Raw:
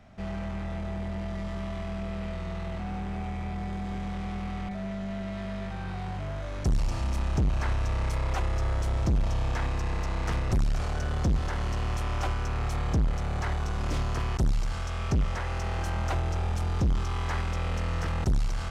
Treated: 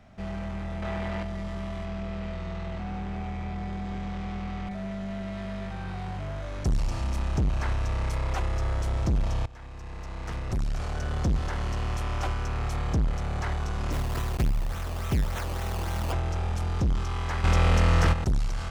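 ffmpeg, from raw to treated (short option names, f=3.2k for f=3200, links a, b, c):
-filter_complex "[0:a]asettb=1/sr,asplit=3[a][b][c];[a]atrim=end=0.824[d];[b]atrim=start=0.82:end=1.23,asetpts=PTS-STARTPTS,afade=t=in:d=0.004:c=qsin,afade=t=out:st=0.406:d=0.004:c=qsin,equalizer=f=1.7k:w=0.33:g=9[e];[c]atrim=start=1.226[f];[d][e]acrossfade=d=0.004:c1=hsin:c2=qsin[g];[g][f]acrossfade=d=0.004:c1=qsin:c2=hsin,asettb=1/sr,asplit=3[h][i][j];[h]atrim=end=1.854[k];[i]atrim=start=1.85:end=4.67,asetpts=PTS-STARTPTS,afade=t=in:d=0.004:c=qsin,afade=t=out:st=2.816:d=0.004:c=qsin,lowpass=7.2k[l];[j]atrim=start=4.666[m];[k][l]acrossfade=d=0.004:c1=hsin:c2=qsin[n];[n][m]acrossfade=d=0.004:c1=qsin:c2=hsin,asplit=3[o][p][q];[o]afade=t=out:st=13.91:d=0.02[r];[p]acrusher=samples=17:mix=1:aa=0.000001:lfo=1:lforange=17:lforate=3.5,afade=t=in:st=13.91:d=0.02,afade=t=out:st=16.11:d=0.02[s];[q]afade=t=in:st=16.11:d=0.02[t];[r][s][t]amix=inputs=3:normalize=0,asplit=4[u][v][w][x];[u]atrim=end=9.46,asetpts=PTS-STARTPTS,afade=t=out:st=9.456:d=0.004:c=hsin:silence=0.0944061[y];[v]atrim=start=9.46:end=17.442,asetpts=PTS-STARTPTS,afade=t=in:d=1.72:silence=0.0944061[z];[w]atrim=start=17.438:end=18.132,asetpts=PTS-STARTPTS,volume=9dB[aa];[x]atrim=start=18.128[ab];[y][z]concat=n=2:v=0:a=1[ac];[ac][aa]acrossfade=d=0.004:c1=hsin:c2=hsin[ad];[ad][ab]acrossfade=d=0.004:c1=hsin:c2=hsin"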